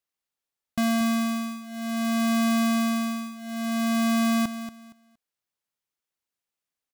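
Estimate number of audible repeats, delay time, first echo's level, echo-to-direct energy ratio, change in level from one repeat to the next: 2, 233 ms, −11.5 dB, −11.5 dB, −13.0 dB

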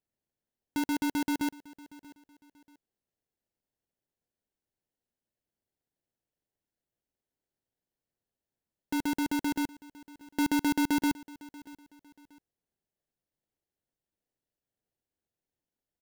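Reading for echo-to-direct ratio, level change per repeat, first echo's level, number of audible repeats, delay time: −20.0 dB, −10.0 dB, −20.5 dB, 2, 635 ms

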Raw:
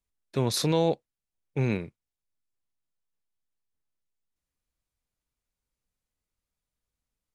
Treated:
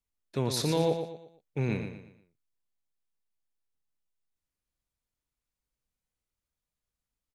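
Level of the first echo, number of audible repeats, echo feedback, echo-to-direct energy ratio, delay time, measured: −7.5 dB, 4, 37%, −7.0 dB, 117 ms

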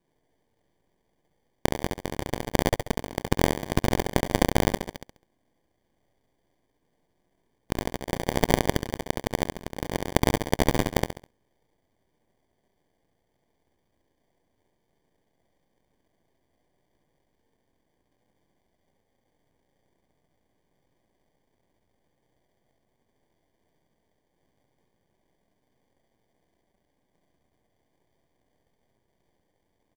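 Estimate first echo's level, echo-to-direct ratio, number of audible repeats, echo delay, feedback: −4.5 dB, −4.0 dB, 4, 68 ms, 35%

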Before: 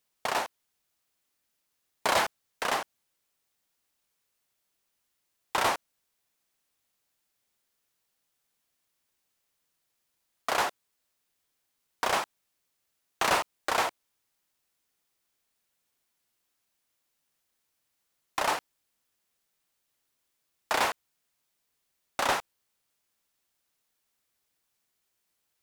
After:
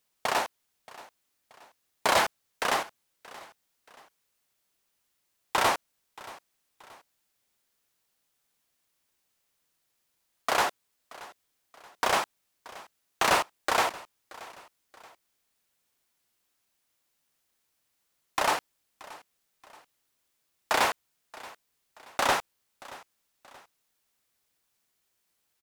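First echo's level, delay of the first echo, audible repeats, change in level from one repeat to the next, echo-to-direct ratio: −20.0 dB, 628 ms, 2, −7.5 dB, −19.5 dB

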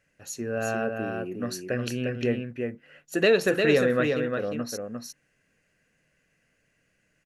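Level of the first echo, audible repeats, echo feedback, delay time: −4.5 dB, 1, repeats not evenly spaced, 352 ms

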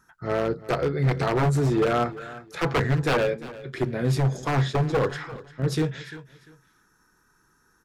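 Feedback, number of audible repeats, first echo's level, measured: 26%, 2, −17.5 dB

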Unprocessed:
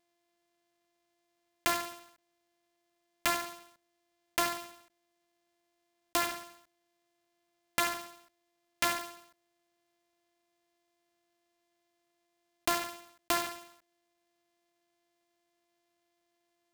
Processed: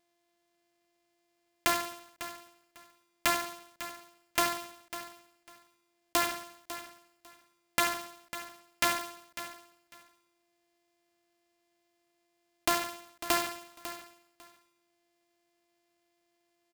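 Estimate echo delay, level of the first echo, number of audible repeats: 549 ms, −13.0 dB, 2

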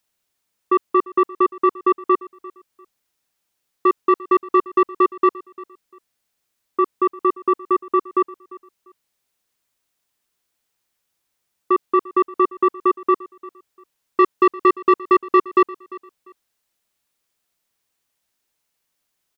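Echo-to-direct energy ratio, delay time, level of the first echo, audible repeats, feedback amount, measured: −19.5 dB, 347 ms, −20.0 dB, 2, 25%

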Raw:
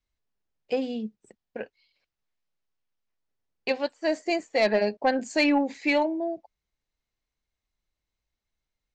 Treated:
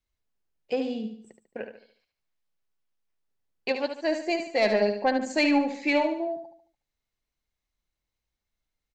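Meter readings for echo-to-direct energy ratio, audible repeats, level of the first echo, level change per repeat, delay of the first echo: −7.0 dB, 4, −8.0 dB, −7.5 dB, 73 ms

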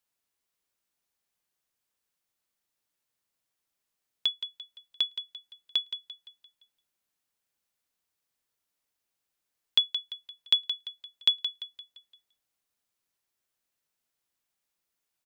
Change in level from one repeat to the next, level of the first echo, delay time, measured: −7.0 dB, −12.0 dB, 172 ms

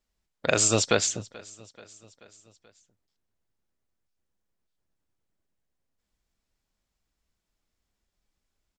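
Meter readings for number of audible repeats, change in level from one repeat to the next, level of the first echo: 3, −4.5 dB, −22.5 dB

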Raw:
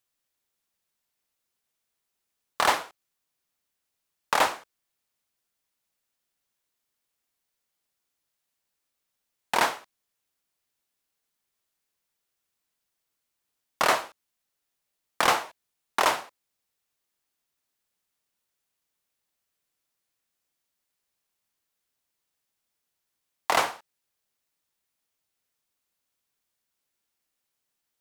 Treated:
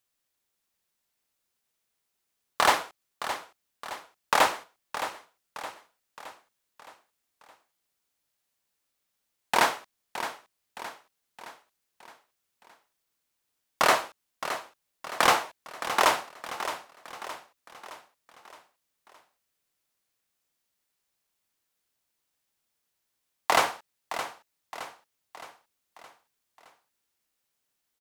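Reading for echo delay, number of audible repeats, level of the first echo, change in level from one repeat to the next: 617 ms, 4, −11.0 dB, −6.0 dB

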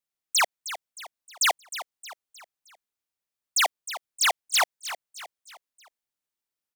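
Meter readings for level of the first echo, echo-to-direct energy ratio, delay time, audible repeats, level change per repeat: −13.0 dB, −12.0 dB, 311 ms, 4, −7.0 dB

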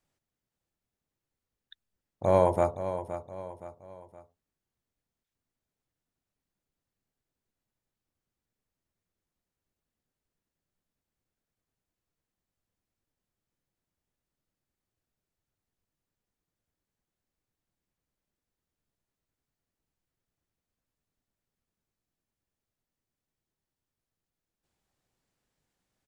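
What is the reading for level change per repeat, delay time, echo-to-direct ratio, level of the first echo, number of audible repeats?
−7.5 dB, 519 ms, −10.0 dB, −11.0 dB, 3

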